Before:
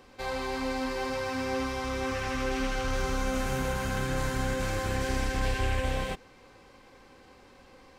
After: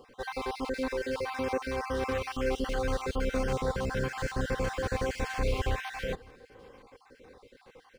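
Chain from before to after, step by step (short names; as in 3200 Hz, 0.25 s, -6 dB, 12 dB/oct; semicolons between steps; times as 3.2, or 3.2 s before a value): random spectral dropouts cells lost 38%; bell 460 Hz +10 dB 0.27 oct; outdoor echo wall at 95 m, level -25 dB; decimation joined by straight lines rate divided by 3×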